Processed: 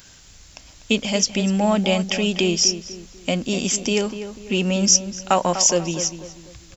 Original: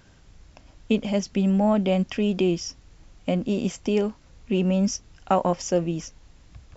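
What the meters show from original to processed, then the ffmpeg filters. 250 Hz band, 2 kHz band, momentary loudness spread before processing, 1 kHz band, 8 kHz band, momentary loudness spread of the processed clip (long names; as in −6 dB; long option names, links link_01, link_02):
+0.5 dB, +10.5 dB, 9 LU, +4.0 dB, can't be measured, 13 LU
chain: -filter_complex "[0:a]asplit=2[link_01][link_02];[link_02]adelay=246,lowpass=frequency=1900:poles=1,volume=-10dB,asplit=2[link_03][link_04];[link_04]adelay=246,lowpass=frequency=1900:poles=1,volume=0.39,asplit=2[link_05][link_06];[link_06]adelay=246,lowpass=frequency=1900:poles=1,volume=0.39,asplit=2[link_07][link_08];[link_08]adelay=246,lowpass=frequency=1900:poles=1,volume=0.39[link_09];[link_03][link_05][link_07][link_09]amix=inputs=4:normalize=0[link_10];[link_01][link_10]amix=inputs=2:normalize=0,crystalizer=i=8.5:c=0"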